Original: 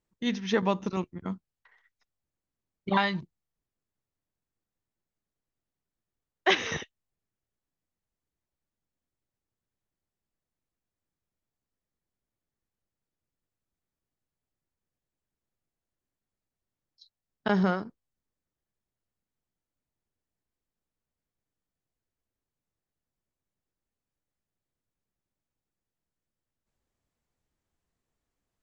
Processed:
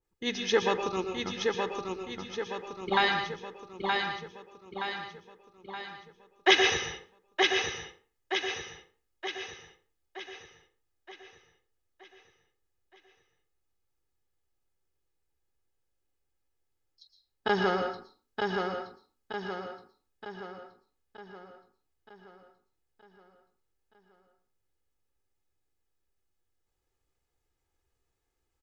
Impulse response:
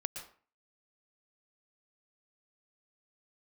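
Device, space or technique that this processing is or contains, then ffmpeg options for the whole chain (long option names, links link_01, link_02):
microphone above a desk: -filter_complex "[0:a]equalizer=frequency=150:width=2.5:gain=-4.5,aecho=1:1:2.4:0.58,aecho=1:1:922|1844|2766|3688|4610|5532|6454:0.631|0.328|0.171|0.0887|0.0461|0.024|0.0125[link_01];[1:a]atrim=start_sample=2205[link_02];[link_01][link_02]afir=irnorm=-1:irlink=0,adynamicequalizer=threshold=0.00562:dfrequency=2200:dqfactor=0.7:tfrequency=2200:tqfactor=0.7:attack=5:release=100:ratio=0.375:range=2.5:mode=boostabove:tftype=highshelf"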